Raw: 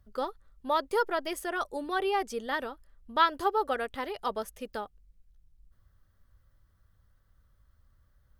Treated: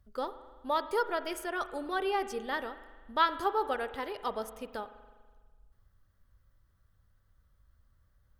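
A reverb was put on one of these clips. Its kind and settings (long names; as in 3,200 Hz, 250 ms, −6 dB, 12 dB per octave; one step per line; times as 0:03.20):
spring reverb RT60 1.5 s, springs 41 ms, chirp 70 ms, DRR 12 dB
level −2.5 dB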